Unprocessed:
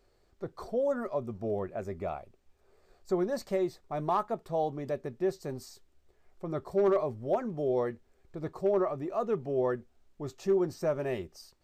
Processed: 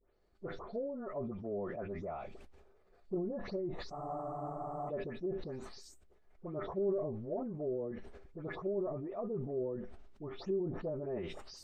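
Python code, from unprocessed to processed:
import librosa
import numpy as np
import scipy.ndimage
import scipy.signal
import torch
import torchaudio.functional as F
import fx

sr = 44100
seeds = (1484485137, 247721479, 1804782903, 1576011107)

y = fx.spec_delay(x, sr, highs='late', ms=214)
y = fx.env_lowpass_down(y, sr, base_hz=400.0, full_db=-26.0)
y = fx.lowpass(y, sr, hz=2800.0, slope=6)
y = fx.comb_fb(y, sr, f0_hz=100.0, decay_s=0.17, harmonics='all', damping=0.0, mix_pct=50)
y = fx.spec_freeze(y, sr, seeds[0], at_s=3.95, hold_s=0.93)
y = fx.sustainer(y, sr, db_per_s=39.0)
y = y * librosa.db_to_amplitude(-3.0)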